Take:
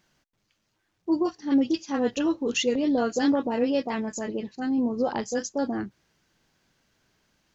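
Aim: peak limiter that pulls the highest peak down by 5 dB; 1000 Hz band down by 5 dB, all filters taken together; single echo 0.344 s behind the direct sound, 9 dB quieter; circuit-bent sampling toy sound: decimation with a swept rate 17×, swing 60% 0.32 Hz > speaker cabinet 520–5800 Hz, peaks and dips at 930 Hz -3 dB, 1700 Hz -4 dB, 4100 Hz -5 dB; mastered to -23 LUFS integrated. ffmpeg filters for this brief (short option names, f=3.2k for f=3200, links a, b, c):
-af "equalizer=f=1k:t=o:g=-4,alimiter=limit=-19dB:level=0:latency=1,aecho=1:1:344:0.355,acrusher=samples=17:mix=1:aa=0.000001:lfo=1:lforange=10.2:lforate=0.32,highpass=520,equalizer=f=930:t=q:w=4:g=-3,equalizer=f=1.7k:t=q:w=4:g=-4,equalizer=f=4.1k:t=q:w=4:g=-5,lowpass=f=5.8k:w=0.5412,lowpass=f=5.8k:w=1.3066,volume=11.5dB"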